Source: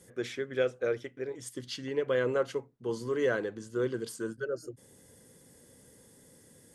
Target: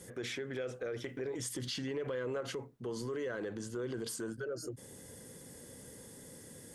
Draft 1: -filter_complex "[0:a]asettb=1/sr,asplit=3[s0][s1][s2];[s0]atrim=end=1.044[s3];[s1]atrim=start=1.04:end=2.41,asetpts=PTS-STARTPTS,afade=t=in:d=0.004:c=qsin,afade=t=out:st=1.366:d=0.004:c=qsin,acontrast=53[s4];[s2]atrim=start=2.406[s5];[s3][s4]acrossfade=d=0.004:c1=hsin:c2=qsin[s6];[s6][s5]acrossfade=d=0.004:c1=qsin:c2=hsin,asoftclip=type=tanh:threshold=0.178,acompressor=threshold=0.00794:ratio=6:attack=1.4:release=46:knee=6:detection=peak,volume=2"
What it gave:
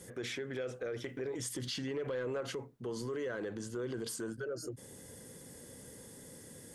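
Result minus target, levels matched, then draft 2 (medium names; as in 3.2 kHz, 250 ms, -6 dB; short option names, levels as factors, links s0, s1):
saturation: distortion +16 dB
-filter_complex "[0:a]asettb=1/sr,asplit=3[s0][s1][s2];[s0]atrim=end=1.044[s3];[s1]atrim=start=1.04:end=2.41,asetpts=PTS-STARTPTS,afade=t=in:d=0.004:c=qsin,afade=t=out:st=1.366:d=0.004:c=qsin,acontrast=53[s4];[s2]atrim=start=2.406[s5];[s3][s4]acrossfade=d=0.004:c1=hsin:c2=qsin[s6];[s6][s5]acrossfade=d=0.004:c1=qsin:c2=hsin,asoftclip=type=tanh:threshold=0.531,acompressor=threshold=0.00794:ratio=6:attack=1.4:release=46:knee=6:detection=peak,volume=2"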